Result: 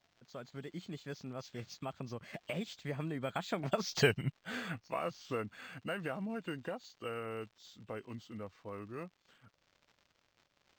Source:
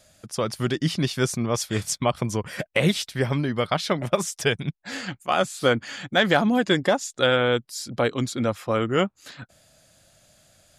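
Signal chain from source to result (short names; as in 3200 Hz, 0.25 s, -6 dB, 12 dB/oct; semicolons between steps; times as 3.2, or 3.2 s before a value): nonlinear frequency compression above 2500 Hz 1.5:1; Doppler pass-by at 4.06, 33 m/s, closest 2.8 m; compressor 2:1, threshold -52 dBFS, peak gain reduction 18.5 dB; crackle 380/s -68 dBFS; decimation joined by straight lines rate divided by 4×; gain +13 dB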